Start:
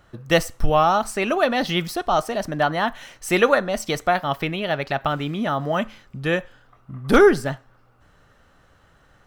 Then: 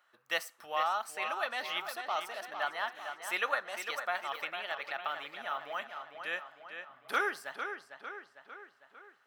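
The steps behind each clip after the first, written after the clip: HPF 1100 Hz 12 dB/oct; bell 6500 Hz -6 dB 1.6 oct; on a send: darkening echo 0.452 s, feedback 55%, low-pass 4800 Hz, level -7.5 dB; on the sum: gain -8.5 dB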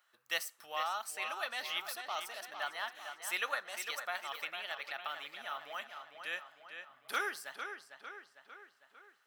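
high shelf 2700 Hz +11.5 dB; gain -7 dB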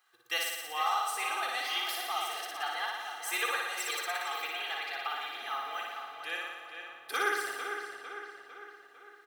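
comb 2.5 ms, depth 96%; on a send: flutter echo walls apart 10 m, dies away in 1.2 s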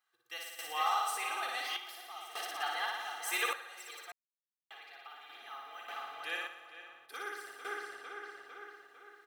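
random-step tremolo 1.7 Hz, depth 100%; gain -1 dB

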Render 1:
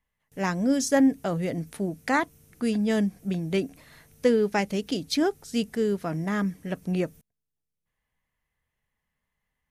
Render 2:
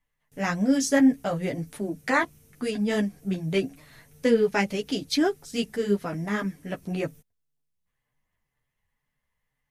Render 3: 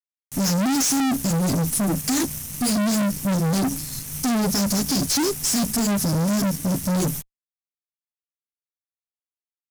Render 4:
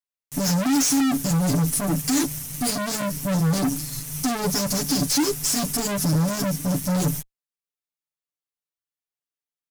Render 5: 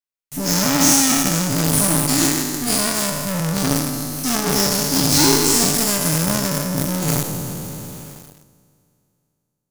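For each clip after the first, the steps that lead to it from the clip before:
dynamic EQ 2300 Hz, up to +3 dB, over -39 dBFS, Q 0.81; chorus voices 6, 1 Hz, delay 11 ms, depth 4.3 ms; gain +3 dB
EQ curve 260 Hz 0 dB, 620 Hz -29 dB, 2800 Hz -21 dB, 5400 Hz +9 dB; in parallel at -7 dB: companded quantiser 4-bit; on the sum: fuzz box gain 43 dB, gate -50 dBFS; gain -6.5 dB
comb 6.9 ms, depth 78%; gain -2.5 dB
spectral trails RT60 2.66 s; notch 730 Hz, Q 19; in parallel at -5 dB: companded quantiser 2-bit; on the sum: gain -4.5 dB

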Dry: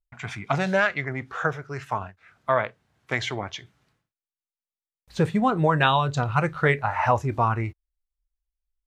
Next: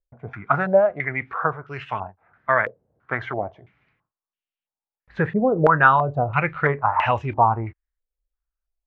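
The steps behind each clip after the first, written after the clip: stepped low-pass 3 Hz 520–2900 Hz; gain -1 dB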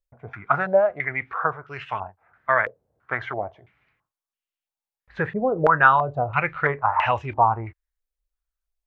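bell 200 Hz -6.5 dB 2.1 oct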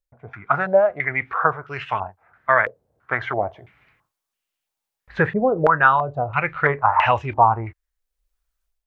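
AGC gain up to 10 dB; gain -1 dB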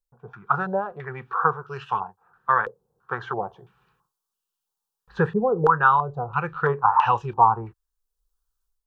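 fixed phaser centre 420 Hz, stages 8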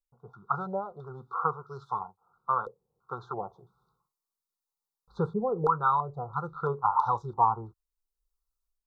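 Chebyshev band-stop 1400–3600 Hz, order 5; gain -6.5 dB

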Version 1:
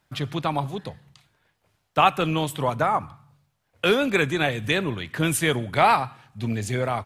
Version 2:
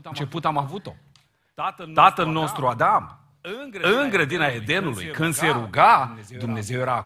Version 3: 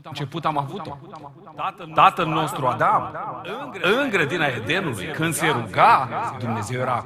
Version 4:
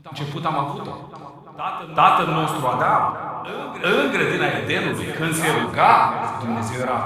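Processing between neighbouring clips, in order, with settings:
reverse echo 0.39 s -12.5 dB; dynamic EQ 1200 Hz, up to +7 dB, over -36 dBFS, Q 1.1; gain -1 dB
darkening echo 0.337 s, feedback 67%, low-pass 2200 Hz, level -12 dB
non-linear reverb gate 0.16 s flat, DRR 1 dB; gain -1.5 dB

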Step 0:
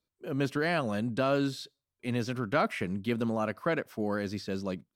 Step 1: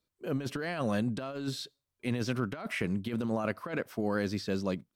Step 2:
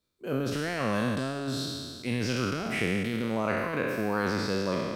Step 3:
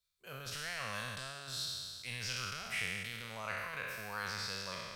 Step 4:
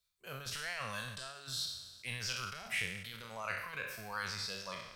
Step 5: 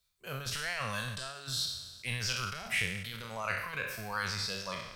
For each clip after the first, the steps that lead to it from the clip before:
negative-ratio compressor -31 dBFS, ratio -0.5
spectral trails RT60 2.04 s
passive tone stack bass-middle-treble 10-0-10; gain -1 dB
reverb removal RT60 1.1 s; gain +2.5 dB
low shelf 210 Hz +4.5 dB; gain +4.5 dB

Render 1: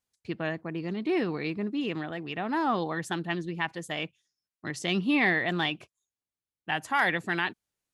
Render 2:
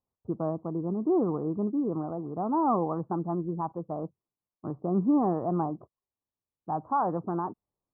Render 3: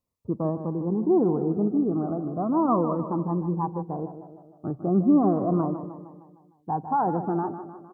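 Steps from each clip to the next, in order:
steep low-pass 1200 Hz 72 dB/oct; gain +2.5 dB
on a send: feedback echo 0.153 s, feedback 54%, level -10.5 dB; on the sum: cascading phaser falling 0.35 Hz; gain +5 dB

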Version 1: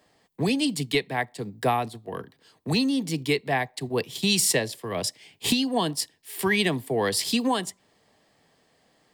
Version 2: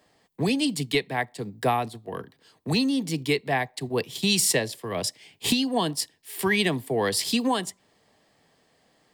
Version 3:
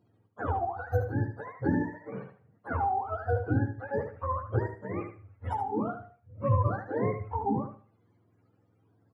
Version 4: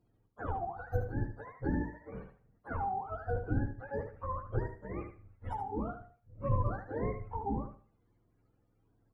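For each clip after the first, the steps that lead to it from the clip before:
nothing audible
spectrum mirrored in octaves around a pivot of 460 Hz; feedback echo 75 ms, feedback 20%, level -8 dB; on a send at -21.5 dB: reverb RT60 0.40 s, pre-delay 75 ms; on the sum: gain -3.5 dB
octaver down 2 oct, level -2 dB; gain -6.5 dB

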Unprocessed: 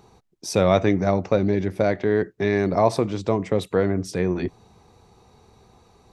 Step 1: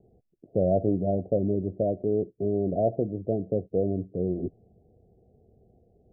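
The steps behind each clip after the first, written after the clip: steep low-pass 710 Hz 96 dB/oct; gain -5 dB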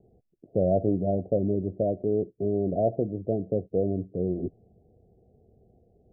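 nothing audible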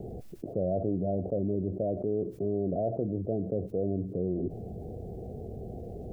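fast leveller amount 70%; gain -7.5 dB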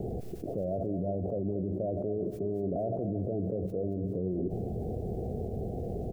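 limiter -30 dBFS, peak gain reduction 10.5 dB; feedback echo 0.227 s, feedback 42%, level -11 dB; gain +5 dB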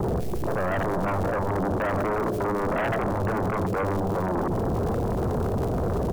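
crackle 190/s -43 dBFS; Schroeder reverb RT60 3.8 s, combs from 31 ms, DRR 10 dB; sine folder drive 10 dB, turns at -22 dBFS

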